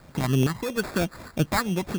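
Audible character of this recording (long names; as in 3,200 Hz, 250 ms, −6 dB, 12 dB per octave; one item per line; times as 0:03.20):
sample-and-hold tremolo 4.3 Hz
a quantiser's noise floor 10 bits, dither triangular
phaser sweep stages 6, 3.1 Hz, lowest notch 450–1,200 Hz
aliases and images of a low sample rate 3,000 Hz, jitter 0%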